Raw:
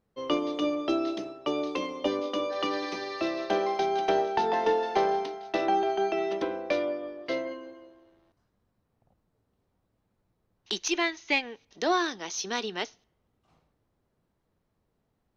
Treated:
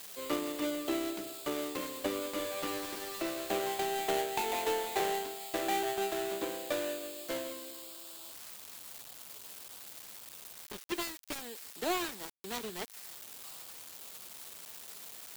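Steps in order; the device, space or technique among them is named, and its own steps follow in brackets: 4.42–5.00 s: Chebyshev high-pass 230 Hz, order 6; budget class-D amplifier (dead-time distortion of 0.26 ms; zero-crossing glitches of -22.5 dBFS); trim -6 dB

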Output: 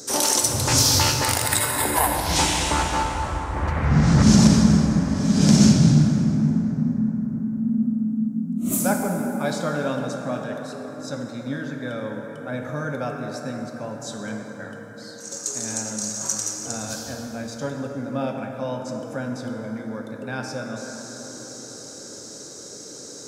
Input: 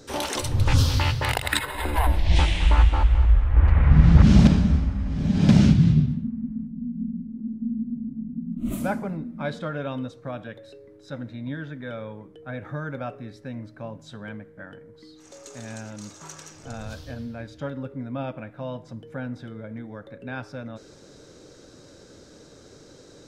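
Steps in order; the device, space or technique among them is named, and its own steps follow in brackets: high-pass 160 Hz 12 dB/octave; over-bright horn tweeter (resonant high shelf 4.4 kHz +12 dB, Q 1.5; peak limiter -11 dBFS, peak gain reduction 11 dB); plate-style reverb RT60 4.9 s, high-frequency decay 0.4×, DRR 2 dB; trim +4 dB

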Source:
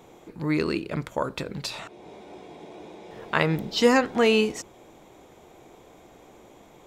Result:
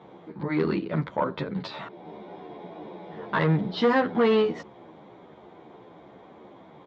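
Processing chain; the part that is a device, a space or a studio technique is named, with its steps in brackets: barber-pole flanger into a guitar amplifier (endless flanger 10.8 ms -2.8 Hz; saturation -21.5 dBFS, distortion -9 dB; cabinet simulation 110–3500 Hz, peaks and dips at 180 Hz +6 dB, 1 kHz +3 dB, 2.6 kHz -9 dB); trim +5 dB

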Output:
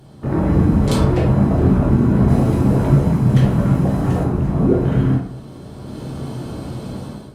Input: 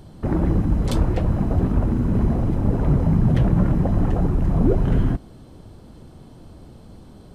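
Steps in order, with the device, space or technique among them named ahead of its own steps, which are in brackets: 2.28–4.23 s: treble shelf 3.3 kHz +10 dB; far-field microphone of a smart speaker (reverberation RT60 0.55 s, pre-delay 11 ms, DRR -2 dB; high-pass 84 Hz 12 dB/octave; level rider gain up to 14.5 dB; trim -1.5 dB; Opus 48 kbps 48 kHz)

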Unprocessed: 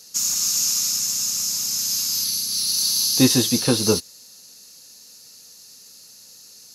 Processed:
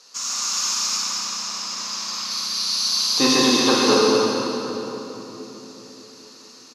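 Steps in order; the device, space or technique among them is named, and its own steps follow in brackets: 0.98–2.31 s: low-pass 3.7 kHz 6 dB/octave; station announcement (band-pass 350–4500 Hz; peaking EQ 1.1 kHz +12 dB 0.56 oct; loudspeakers at several distances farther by 22 m -11 dB, 46 m -10 dB; reverberation RT60 3.7 s, pre-delay 25 ms, DRR -3.5 dB); feedback delay 226 ms, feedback 45%, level -6.5 dB

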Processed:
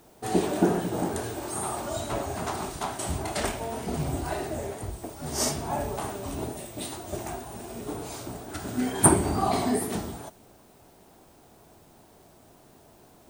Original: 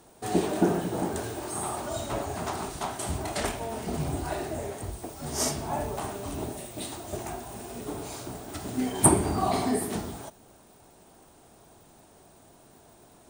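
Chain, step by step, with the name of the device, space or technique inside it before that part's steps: 8.51–9.16 s: peaking EQ 1.5 kHz +7 dB 0.33 oct; plain cassette with noise reduction switched in (tape noise reduction on one side only decoder only; wow and flutter; white noise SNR 33 dB); trim +1 dB

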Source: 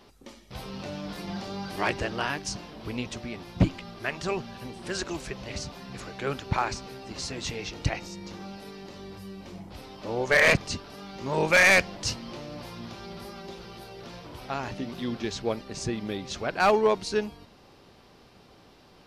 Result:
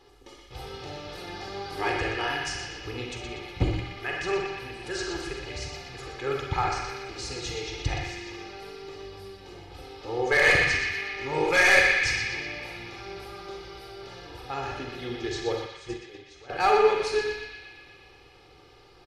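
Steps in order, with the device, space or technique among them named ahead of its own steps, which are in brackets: microphone above a desk (comb 2.4 ms, depth 86%; reverberation RT60 0.55 s, pre-delay 37 ms, DRR 2.5 dB); treble shelf 12 kHz -6.5 dB; 15.66–16.50 s: gate -24 dBFS, range -16 dB; flutter echo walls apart 11.3 m, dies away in 0.31 s; band-passed feedback delay 121 ms, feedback 75%, band-pass 2.6 kHz, level -3 dB; trim -4.5 dB

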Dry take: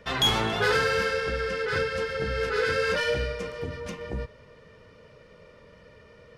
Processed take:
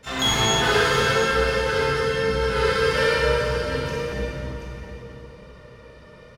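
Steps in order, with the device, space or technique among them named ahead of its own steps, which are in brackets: shimmer-style reverb (harmony voices +12 st -11 dB; reverberation RT60 3.1 s, pre-delay 24 ms, DRR -4.5 dB); peaking EQ 81 Hz +3 dB 0.77 oct; multi-tap echo 65/730 ms -5/-10.5 dB; trim -2.5 dB

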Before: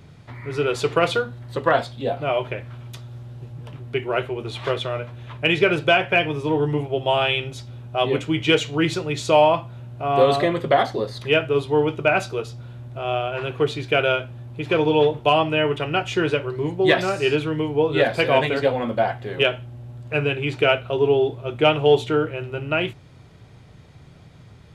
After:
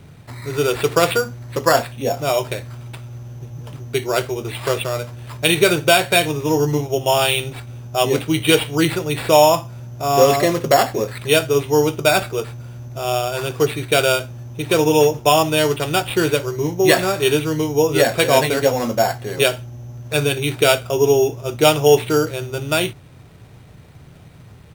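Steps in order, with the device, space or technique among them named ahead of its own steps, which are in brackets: crushed at another speed (playback speed 0.8×; sample-and-hold 9×; playback speed 1.25×); trim +3.5 dB

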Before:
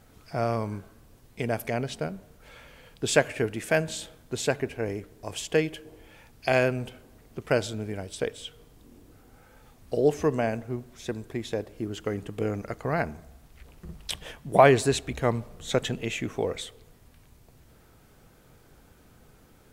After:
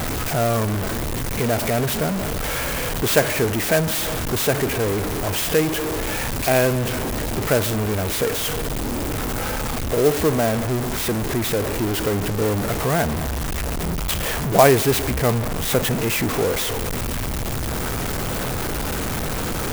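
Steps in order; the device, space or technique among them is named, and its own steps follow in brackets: early CD player with a faulty converter (jump at every zero crossing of -20.5 dBFS; sampling jitter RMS 0.055 ms); trim +2 dB

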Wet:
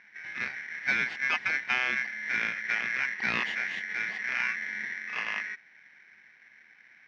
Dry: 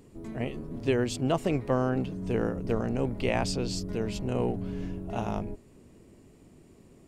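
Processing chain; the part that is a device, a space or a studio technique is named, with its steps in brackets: ring modulator pedal into a guitar cabinet (polarity switched at an audio rate 1.9 kHz; cabinet simulation 110–3600 Hz, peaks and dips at 210 Hz +9 dB, 560 Hz -3 dB, 1.3 kHz -7 dB)

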